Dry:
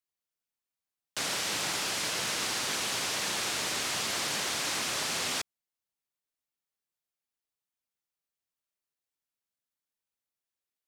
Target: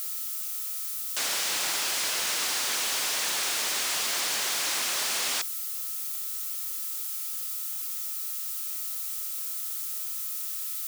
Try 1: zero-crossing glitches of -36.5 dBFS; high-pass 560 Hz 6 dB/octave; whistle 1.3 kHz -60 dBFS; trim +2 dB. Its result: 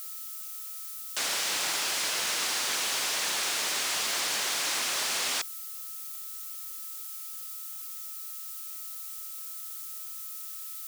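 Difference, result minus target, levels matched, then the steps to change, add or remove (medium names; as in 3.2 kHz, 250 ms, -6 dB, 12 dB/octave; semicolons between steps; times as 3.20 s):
zero-crossing glitches: distortion -6 dB
change: zero-crossing glitches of -30 dBFS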